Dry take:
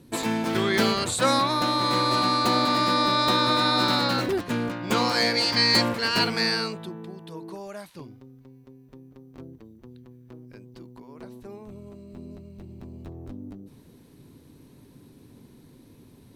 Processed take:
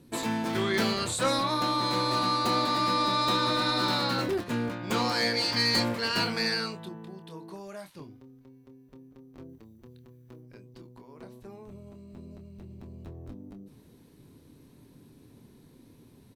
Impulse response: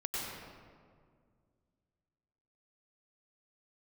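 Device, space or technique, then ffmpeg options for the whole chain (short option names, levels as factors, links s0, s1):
saturation between pre-emphasis and de-emphasis: -filter_complex "[0:a]asettb=1/sr,asplit=3[s0][s1][s2];[s0]atrim=end=9.494[s3];[s1]atrim=start=9.49:end=10.41,asetpts=PTS-STARTPTS,afade=t=in:d=0.004:c=qsin,afade=t=out:st=0.916:d=0.004:c=qsin,highshelf=f=5400:g=6[s4];[s2]atrim=start=10.406[s5];[s3][s4]acrossfade=d=0.004:c1=hsin:c2=qsin[s6];[s6][s5]acrossfade=d=0.004:c1=qsin:c2=hsin,highshelf=f=12000:g=9.5,asplit=2[s7][s8];[s8]adelay=26,volume=0.376[s9];[s7][s9]amix=inputs=2:normalize=0,asoftclip=type=tanh:threshold=0.237,highshelf=f=12000:g=-9.5,volume=0.631"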